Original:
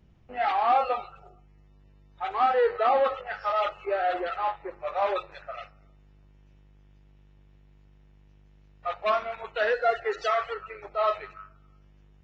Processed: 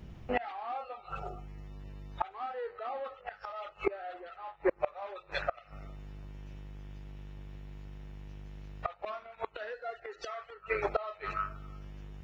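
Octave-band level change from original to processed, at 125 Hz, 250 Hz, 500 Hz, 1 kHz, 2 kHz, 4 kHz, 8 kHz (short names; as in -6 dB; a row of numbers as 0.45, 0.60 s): +9.0 dB, +2.0 dB, -9.5 dB, -12.0 dB, -7.5 dB, -9.5 dB, n/a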